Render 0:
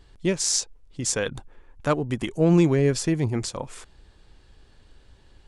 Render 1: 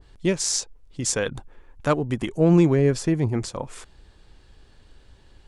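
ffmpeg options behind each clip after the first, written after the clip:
-af "adynamicequalizer=threshold=0.00794:dfrequency=2000:dqfactor=0.7:tfrequency=2000:tqfactor=0.7:attack=5:release=100:ratio=0.375:range=3:mode=cutabove:tftype=highshelf,volume=1.5dB"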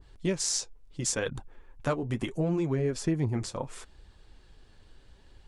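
-af "acompressor=threshold=-20dB:ratio=6,flanger=delay=0.6:depth=9.9:regen=-43:speed=0.73:shape=triangular"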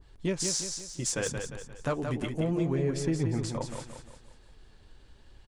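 -filter_complex "[0:a]aeval=exprs='0.237*(cos(1*acos(clip(val(0)/0.237,-1,1)))-cos(1*PI/2))+0.0473*(cos(5*acos(clip(val(0)/0.237,-1,1)))-cos(5*PI/2))+0.0168*(cos(7*acos(clip(val(0)/0.237,-1,1)))-cos(7*PI/2))':c=same,asplit=2[a][b];[b]aecho=0:1:176|352|528|704|880:0.501|0.221|0.097|0.0427|0.0188[c];[a][c]amix=inputs=2:normalize=0,volume=-4.5dB"

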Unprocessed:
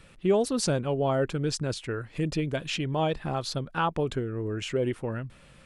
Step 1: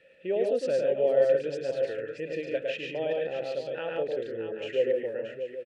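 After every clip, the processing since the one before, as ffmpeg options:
-filter_complex "[0:a]asplit=3[a][b][c];[a]bandpass=f=530:t=q:w=8,volume=0dB[d];[b]bandpass=f=1.84k:t=q:w=8,volume=-6dB[e];[c]bandpass=f=2.48k:t=q:w=8,volume=-9dB[f];[d][e][f]amix=inputs=3:normalize=0,asplit=2[g][h];[h]aecho=0:1:107|143|173|629|784:0.668|0.596|0.112|0.335|0.211[i];[g][i]amix=inputs=2:normalize=0,volume=6.5dB"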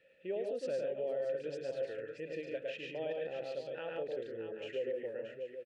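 -af "alimiter=limit=-21dB:level=0:latency=1:release=99,volume=-8dB"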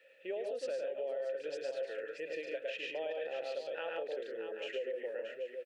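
-af "highpass=510,acompressor=threshold=-40dB:ratio=6,volume=5.5dB"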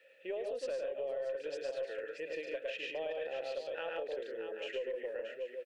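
-af "aeval=exprs='0.0422*(cos(1*acos(clip(val(0)/0.0422,-1,1)))-cos(1*PI/2))+0.00106*(cos(4*acos(clip(val(0)/0.0422,-1,1)))-cos(4*PI/2))+0.000422*(cos(6*acos(clip(val(0)/0.0422,-1,1)))-cos(6*PI/2))':c=same"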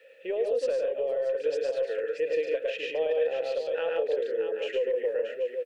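-af "equalizer=f=470:w=5:g=10,volume=5.5dB"

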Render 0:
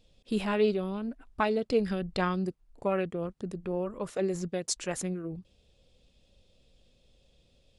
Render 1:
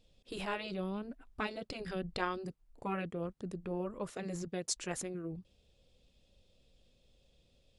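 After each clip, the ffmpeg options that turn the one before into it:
-af "afftfilt=real='re*lt(hypot(re,im),0.251)':imag='im*lt(hypot(re,im),0.251)':win_size=1024:overlap=0.75,volume=-4dB"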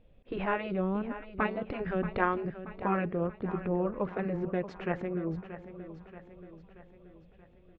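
-filter_complex "[0:a]lowpass=f=2.2k:w=0.5412,lowpass=f=2.2k:w=1.3066,asplit=2[a][b];[b]aecho=0:1:630|1260|1890|2520|3150|3780:0.237|0.128|0.0691|0.0373|0.0202|0.0109[c];[a][c]amix=inputs=2:normalize=0,volume=7.5dB"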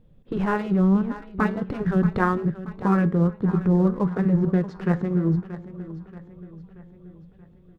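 -filter_complex "[0:a]asplit=2[a][b];[b]aeval=exprs='sgn(val(0))*max(abs(val(0))-0.01,0)':c=same,volume=-4dB[c];[a][c]amix=inputs=2:normalize=0,flanger=delay=8.4:depth=2.9:regen=84:speed=0.36:shape=triangular,equalizer=f=160:t=o:w=0.67:g=10,equalizer=f=630:t=o:w=0.67:g=-7,equalizer=f=2.5k:t=o:w=0.67:g=-11,volume=8.5dB"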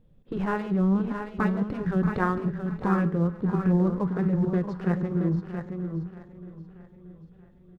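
-af "aecho=1:1:140|674:0.112|0.447,volume=-4dB"

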